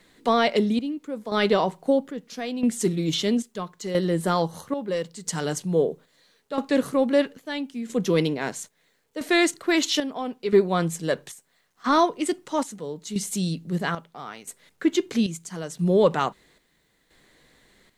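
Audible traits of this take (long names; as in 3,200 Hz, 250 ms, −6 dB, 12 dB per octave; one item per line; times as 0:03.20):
chopped level 0.76 Hz, depth 65%, duty 60%
a quantiser's noise floor 12 bits, dither none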